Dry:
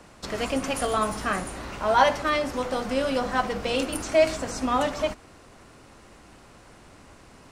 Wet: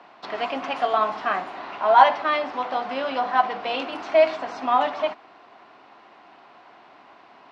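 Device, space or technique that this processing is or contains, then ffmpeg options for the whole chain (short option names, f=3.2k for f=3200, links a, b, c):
phone earpiece: -af "highpass=370,equalizer=f=510:t=q:w=4:g=-7,equalizer=f=720:t=q:w=4:g=8,equalizer=f=1k:t=q:w=4:g=5,lowpass=f=3.9k:w=0.5412,lowpass=f=3.9k:w=1.3066,volume=1dB"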